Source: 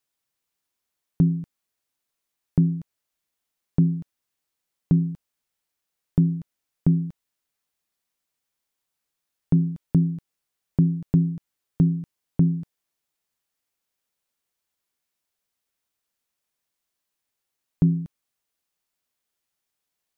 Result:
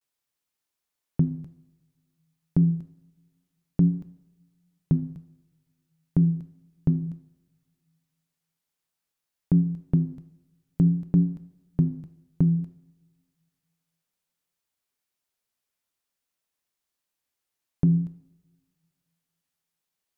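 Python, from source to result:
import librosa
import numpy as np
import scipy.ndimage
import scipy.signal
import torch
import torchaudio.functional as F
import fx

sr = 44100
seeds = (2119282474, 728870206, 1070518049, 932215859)

y = fx.vibrato(x, sr, rate_hz=0.56, depth_cents=74.0)
y = fx.rev_double_slope(y, sr, seeds[0], early_s=0.72, late_s=2.2, knee_db=-23, drr_db=11.0)
y = y * 10.0 ** (-2.5 / 20.0)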